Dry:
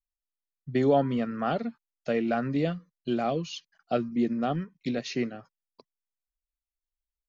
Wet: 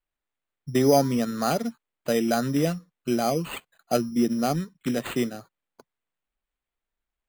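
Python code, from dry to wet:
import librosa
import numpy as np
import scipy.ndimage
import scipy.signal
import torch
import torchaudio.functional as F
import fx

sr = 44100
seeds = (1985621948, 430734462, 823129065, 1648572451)

y = np.repeat(x[::8], 8)[:len(x)]
y = y * librosa.db_to_amplitude(3.5)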